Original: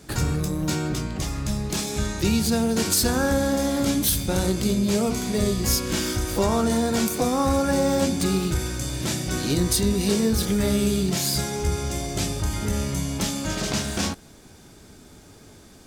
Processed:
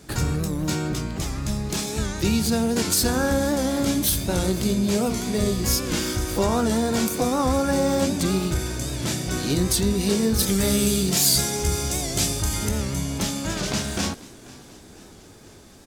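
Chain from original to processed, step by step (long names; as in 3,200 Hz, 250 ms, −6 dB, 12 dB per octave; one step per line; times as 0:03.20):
0:10.39–0:12.69: high-shelf EQ 3,700 Hz +9 dB
echo with shifted repeats 490 ms, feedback 61%, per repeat +52 Hz, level −21 dB
wow of a warped record 78 rpm, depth 100 cents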